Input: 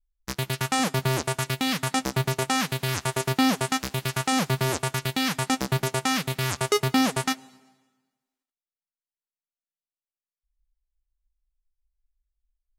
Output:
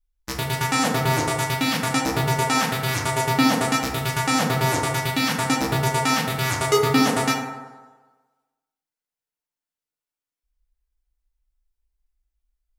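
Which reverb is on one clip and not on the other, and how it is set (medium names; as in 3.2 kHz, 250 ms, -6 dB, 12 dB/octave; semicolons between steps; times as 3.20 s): FDN reverb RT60 1.3 s, low-frequency decay 0.8×, high-frequency decay 0.35×, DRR -2 dB; trim +1 dB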